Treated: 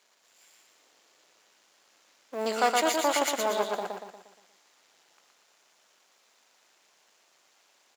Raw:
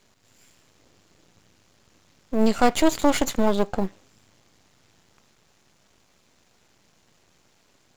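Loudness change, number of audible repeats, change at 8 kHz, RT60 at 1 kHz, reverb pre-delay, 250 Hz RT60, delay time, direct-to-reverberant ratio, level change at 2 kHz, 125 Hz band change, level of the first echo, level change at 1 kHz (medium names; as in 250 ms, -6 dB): -5.0 dB, 5, -0.5 dB, no reverb, no reverb, no reverb, 118 ms, no reverb, -0.5 dB, under -15 dB, -3.0 dB, -1.5 dB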